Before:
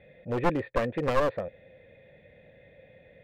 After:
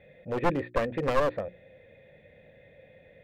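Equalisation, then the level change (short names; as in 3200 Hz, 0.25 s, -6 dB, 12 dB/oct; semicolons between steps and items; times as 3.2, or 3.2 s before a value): notches 60/120/180/240/300/360 Hz; 0.0 dB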